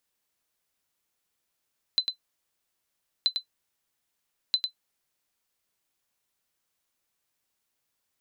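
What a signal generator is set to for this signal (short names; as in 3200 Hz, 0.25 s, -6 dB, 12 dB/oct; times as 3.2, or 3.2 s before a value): sonar ping 4040 Hz, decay 0.10 s, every 1.28 s, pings 3, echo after 0.10 s, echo -6 dB -13.5 dBFS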